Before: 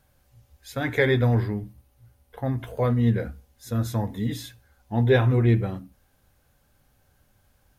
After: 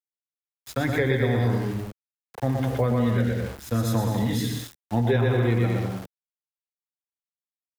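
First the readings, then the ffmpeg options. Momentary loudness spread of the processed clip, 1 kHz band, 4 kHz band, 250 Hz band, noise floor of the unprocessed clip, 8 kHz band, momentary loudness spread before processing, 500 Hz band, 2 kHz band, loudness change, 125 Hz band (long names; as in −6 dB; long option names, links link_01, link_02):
10 LU, +2.5 dB, +2.0 dB, +1.0 dB, −65 dBFS, +6.0 dB, 16 LU, 0.0 dB, −1.0 dB, −0.5 dB, −0.5 dB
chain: -filter_complex "[0:a]aecho=1:1:120|204|262.8|304|332.8:0.631|0.398|0.251|0.158|0.1,aeval=exprs='val(0)*gte(abs(val(0)),0.0112)':channel_layout=same,acrossover=split=170|480[link_01][link_02][link_03];[link_01]acompressor=threshold=-31dB:ratio=4[link_04];[link_02]acompressor=threshold=-30dB:ratio=4[link_05];[link_03]acompressor=threshold=-32dB:ratio=4[link_06];[link_04][link_05][link_06]amix=inputs=3:normalize=0,volume=4dB"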